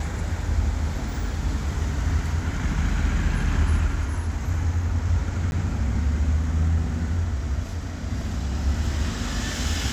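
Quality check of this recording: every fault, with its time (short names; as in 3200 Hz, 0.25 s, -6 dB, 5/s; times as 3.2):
5.51–5.52 gap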